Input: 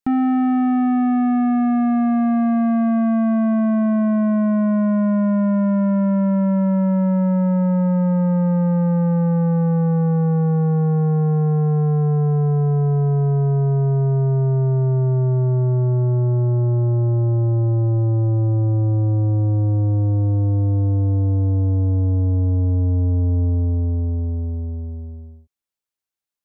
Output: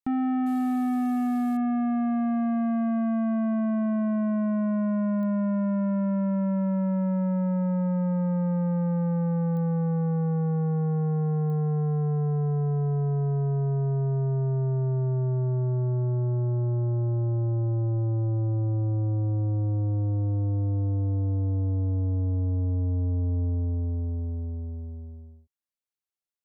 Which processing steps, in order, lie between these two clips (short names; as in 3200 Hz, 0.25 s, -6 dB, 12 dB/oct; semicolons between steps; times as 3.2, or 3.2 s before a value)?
0.46–1.57 CVSD 64 kbps; pops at 5.23/9.57/11.5, -23 dBFS; gain -8 dB